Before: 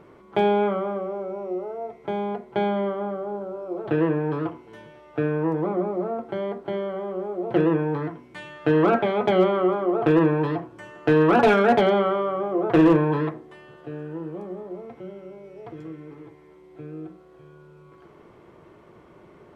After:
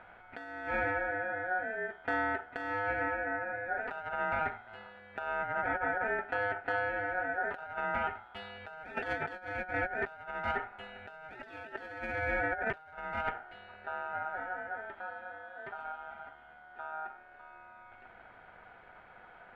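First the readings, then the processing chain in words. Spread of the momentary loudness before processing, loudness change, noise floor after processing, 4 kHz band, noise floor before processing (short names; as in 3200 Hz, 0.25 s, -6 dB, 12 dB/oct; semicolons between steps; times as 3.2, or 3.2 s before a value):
22 LU, -12.5 dB, -56 dBFS, -13.5 dB, -51 dBFS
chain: Wiener smoothing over 9 samples; notch 3100 Hz, Q 20; negative-ratio compressor -26 dBFS, ratio -0.5; ring modulator 1100 Hz; gain -5.5 dB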